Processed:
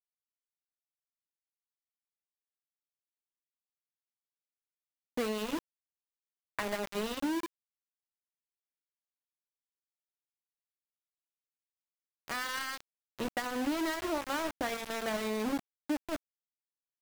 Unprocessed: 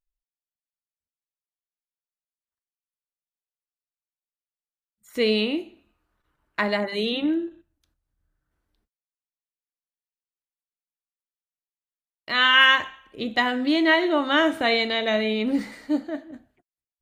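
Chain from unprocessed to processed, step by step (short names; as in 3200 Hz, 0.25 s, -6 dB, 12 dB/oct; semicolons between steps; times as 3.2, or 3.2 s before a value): compressor 12:1, threshold -26 dBFS, peak gain reduction 15.5 dB; LPF 1800 Hz 12 dB/oct; sample gate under -29.5 dBFS; gain -2.5 dB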